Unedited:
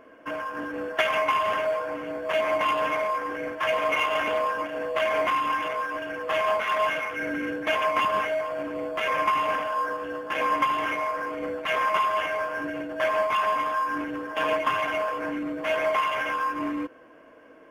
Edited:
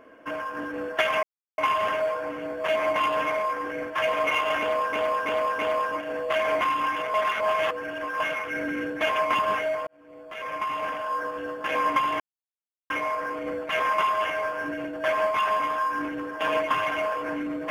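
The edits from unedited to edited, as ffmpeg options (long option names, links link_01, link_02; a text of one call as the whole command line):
ffmpeg -i in.wav -filter_complex "[0:a]asplit=9[link_01][link_02][link_03][link_04][link_05][link_06][link_07][link_08][link_09];[link_01]atrim=end=1.23,asetpts=PTS-STARTPTS,afade=type=out:start_time=1.226:duration=0.004:curve=hsin,apad=pad_dur=0.35[link_10];[link_02]atrim=start=1.23:end=4.582,asetpts=PTS-STARTPTS,afade=type=in:duration=0.004:curve=hsin[link_11];[link_03]atrim=start=4.248:end=4.582[link_12];[link_04]atrim=start=4.248:end=4.582[link_13];[link_05]atrim=start=4.248:end=5.802[link_14];[link_06]atrim=start=5.798:end=6.862,asetpts=PTS-STARTPTS,areverse[link_15];[link_07]atrim=start=6.858:end=8.53,asetpts=PTS-STARTPTS,afade=type=out:start_time=1.668:duration=0.004:curve=hsin[link_16];[link_08]atrim=start=8.53:end=10.86,asetpts=PTS-STARTPTS,afade=type=in:duration=1.54,afade=type=out:start_time=2.326:duration=0.004:curve=hsin,apad=pad_dur=0.7[link_17];[link_09]atrim=start=10.86,asetpts=PTS-STARTPTS,afade=type=in:duration=0.004:curve=hsin[link_18];[link_10][link_11]concat=n=2:v=0:a=1[link_19];[link_19][link_12]acrossfade=duration=0.004:curve1=hsin:curve2=hsin[link_20];[link_20][link_13]acrossfade=duration=0.004:curve1=hsin:curve2=hsin[link_21];[link_21][link_14]acrossfade=duration=0.004:curve1=hsin:curve2=hsin[link_22];[link_22][link_15]acrossfade=duration=0.004:curve1=hsin:curve2=hsin[link_23];[link_16][link_17][link_18]concat=n=3:v=0:a=1[link_24];[link_23][link_24]acrossfade=duration=0.004:curve1=hsin:curve2=hsin" out.wav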